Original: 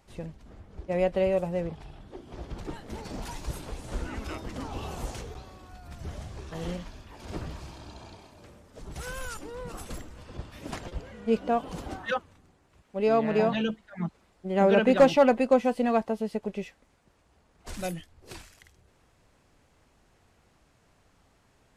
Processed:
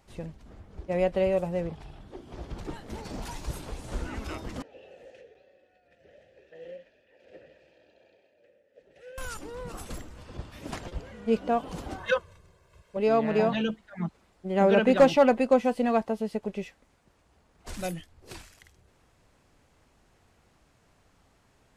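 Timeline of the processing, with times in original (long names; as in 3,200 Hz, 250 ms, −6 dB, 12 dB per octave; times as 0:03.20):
0:04.62–0:09.18: formant filter e
0:11.98–0:12.97: comb filter 1.9 ms, depth 92%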